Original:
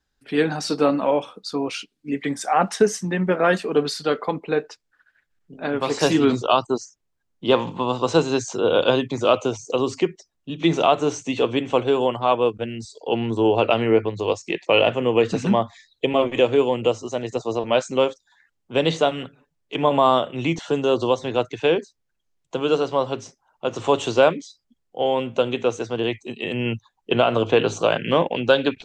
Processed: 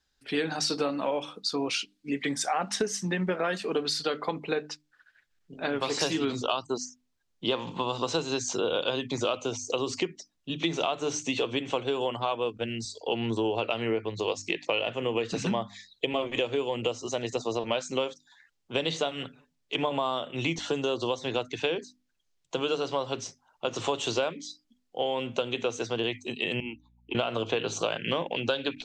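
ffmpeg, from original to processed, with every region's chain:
-filter_complex "[0:a]asettb=1/sr,asplit=3[a][b][c];[a]atrim=end=26.604[d];[b]atrim=start=26.6:end=27.15,asetpts=PTS-STARTPTS,afade=t=in:d=0.004:c=qsin,afade=t=out:st=0.546:d=0.004:c=qsin,asplit=3[e][f][g];[e]bandpass=f=300:t=q:w=8,volume=0dB[h];[f]bandpass=f=870:t=q:w=8,volume=-6dB[i];[g]bandpass=f=2.24k:t=q:w=8,volume=-9dB[j];[h][i][j]amix=inputs=3:normalize=0,aemphasis=mode=production:type=75kf,aeval=exprs='val(0)+0.00126*(sin(2*PI*60*n/s)+sin(2*PI*2*60*n/s)/2+sin(2*PI*3*60*n/s)/3+sin(2*PI*4*60*n/s)/4+sin(2*PI*5*60*n/s)/5)':c=same[k];[c]atrim=start=27.146[l];[d][k]acrossfade=d=0.004:c1=hsin:c2=qsin[m];[m][l]acrossfade=d=0.004:c1=qsin:c2=hsin,equalizer=f=4.5k:w=0.58:g=7.5,bandreject=f=50:t=h:w=6,bandreject=f=100:t=h:w=6,bandreject=f=150:t=h:w=6,bandreject=f=200:t=h:w=6,bandreject=f=250:t=h:w=6,bandreject=f=300:t=h:w=6,acompressor=threshold=-22dB:ratio=6,volume=-3dB"

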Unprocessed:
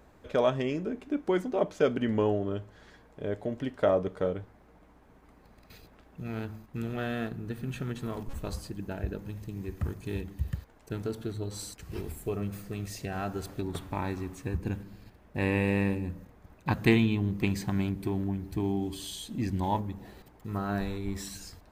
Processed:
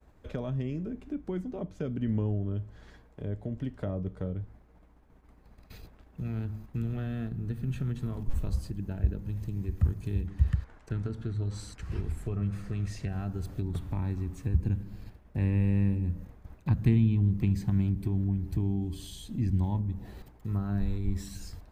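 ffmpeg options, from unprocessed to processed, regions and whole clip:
-filter_complex "[0:a]asettb=1/sr,asplit=3[a][b][c];[a]atrim=end=10.274[d];[b]atrim=start=10.27:end=13.09,asetpts=PTS-STARTPTS,afade=t=in:d=0.004:c=qsin,afade=t=out:st=2.816:d=0.004:c=qsin,lowpass=8.4k,equalizer=f=1.5k:t=o:w=1.5:g=7.5[e];[c]atrim=start=13.086[f];[d][e]acrossfade=d=0.004:c1=hsin:c2=qsin[g];[g][f]acrossfade=d=0.004:c1=qsin:c2=hsin,agate=range=-33dB:threshold=-51dB:ratio=3:detection=peak,lowshelf=f=120:g=11,acrossover=split=240[h][i];[i]acompressor=threshold=-47dB:ratio=2.5[j];[h][j]amix=inputs=2:normalize=0"

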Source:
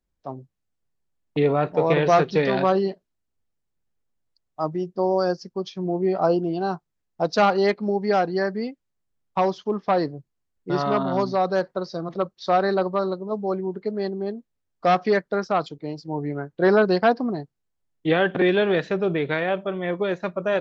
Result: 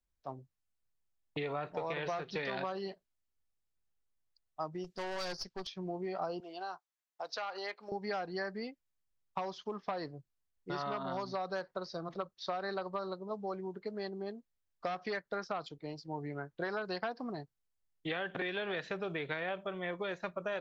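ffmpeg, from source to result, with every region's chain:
-filter_complex "[0:a]asettb=1/sr,asplit=3[a][b][c];[a]atrim=end=4.844[d];[b]atrim=start=4.84:end=5.67,asetpts=PTS-STARTPTS,afade=t=in:d=0.004:c=qsin,afade=t=out:st=0.826:d=0.004:c=qsin,equalizer=f=4.6k:w=0.32:g=14.5,aeval=exprs='(tanh(17.8*val(0)+0.5)-tanh(0.5))/17.8':c=same[e];[c]atrim=start=5.666[f];[d][e]acrossfade=d=0.004:c1=hsin:c2=qsin[g];[g][f]acrossfade=d=0.004:c1=qsin:c2=hsin,asettb=1/sr,asplit=3[h][i][j];[h]atrim=end=6.404[k];[i]atrim=start=6.4:end=7.92,asetpts=PTS-STARTPTS,afade=t=in:d=0.004:c=qsin,afade=t=out:st=1.516:d=0.004:c=qsin,highpass=630,acompressor=threshold=-28dB:ratio=4:attack=3.2:release=140:knee=1:detection=peak[l];[j]atrim=start=7.916[m];[k][l]acrossfade=d=0.004:c1=hsin:c2=qsin[n];[n][m]acrossfade=d=0.004:c1=qsin:c2=hsin,acrossover=split=660|5700[o][p][q];[o]acompressor=threshold=-25dB:ratio=4[r];[p]acompressor=threshold=-25dB:ratio=4[s];[q]acompressor=threshold=-57dB:ratio=4[t];[r][s][t]amix=inputs=3:normalize=0,equalizer=f=250:t=o:w=2.8:g=-7.5,acompressor=threshold=-28dB:ratio=6,volume=-5dB"

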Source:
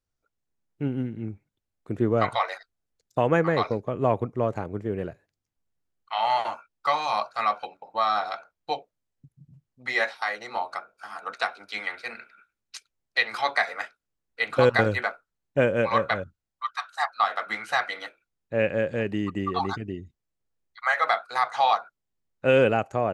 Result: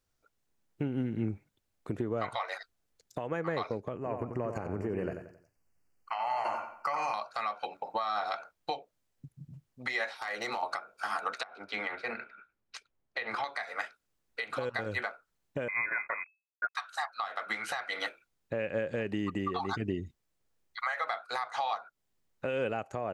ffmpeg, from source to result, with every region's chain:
-filter_complex "[0:a]asettb=1/sr,asplit=3[a][b][c];[a]atrim=end=3.964[d];[b]atrim=start=3.96:end=7.14,asetpts=PTS-STARTPTS,afade=t=in:d=0.004:c=qsin,afade=t=out:st=3.176:d=0.004:c=qsin,acompressor=threshold=-34dB:ratio=6:attack=3.2:release=140:knee=1:detection=peak,asuperstop=centerf=3600:order=8:qfactor=2.6,asplit=2[e][f];[f]adelay=90,lowpass=f=4.3k:p=1,volume=-7.5dB,asplit=2[g][h];[h]adelay=90,lowpass=f=4.3k:p=1,volume=0.39,asplit=2[i][j];[j]adelay=90,lowpass=f=4.3k:p=1,volume=0.39,asplit=2[k][l];[l]adelay=90,lowpass=f=4.3k:p=1,volume=0.39[m];[e][g][i][k][m]amix=inputs=5:normalize=0,atrim=end_sample=140238[n];[c]atrim=start=7.136[o];[d][n]acrossfade=d=0.004:c1=hsin:c2=qsin[p];[p][o]acrossfade=d=0.004:c1=qsin:c2=hsin,asettb=1/sr,asplit=3[q][r][s];[q]atrim=end=10.184[t];[r]atrim=start=10.18:end=10.63,asetpts=PTS-STARTPTS,afade=t=in:d=0.004:c=qsin,afade=t=out:st=0.446:d=0.004:c=qsin,acompressor=threshold=-36dB:ratio=16:attack=3.2:release=140:knee=1:detection=peak,asoftclip=type=hard:threshold=-34dB[u];[s]atrim=start=10.626[v];[t][u]acrossfade=d=0.004:c1=hsin:c2=qsin[w];[w][v]acrossfade=d=0.004:c1=qsin:c2=hsin,asettb=1/sr,asplit=3[x][y][z];[x]atrim=end=11.434[aa];[y]atrim=start=11.43:end=13.44,asetpts=PTS-STARTPTS,afade=t=in:d=0.004:c=qsin,afade=t=out:st=2.006:d=0.004:c=qsin,lowpass=f=1.1k:p=1,acompressor=threshold=-35dB:ratio=16:attack=3.2:release=140:knee=1:detection=peak[ab];[z]atrim=start=13.436[ac];[aa][ab]acrossfade=d=0.004:c1=hsin:c2=qsin[ad];[ad][ac]acrossfade=d=0.004:c1=qsin:c2=hsin,asettb=1/sr,asplit=3[ae][af][ag];[ae]atrim=end=15.684[ah];[af]atrim=start=15.68:end=16.75,asetpts=PTS-STARTPTS,afade=t=in:d=0.004:c=qsin,afade=t=out:st=1.066:d=0.004:c=qsin,aeval=exprs='sgn(val(0))*max(abs(val(0))-0.00794,0)':c=same,lowpass=f=2.2k:t=q:w=0.5098,lowpass=f=2.2k:t=q:w=0.6013,lowpass=f=2.2k:t=q:w=0.9,lowpass=f=2.2k:t=q:w=2.563,afreqshift=-2600[ai];[ag]atrim=start=16.746[aj];[ah][ai]acrossfade=d=0.004:c1=hsin:c2=qsin[ak];[ak][aj]acrossfade=d=0.004:c1=qsin:c2=hsin,lowshelf=f=220:g=-4,acompressor=threshold=-33dB:ratio=10,alimiter=level_in=4dB:limit=-24dB:level=0:latency=1:release=239,volume=-4dB,volume=6.5dB"

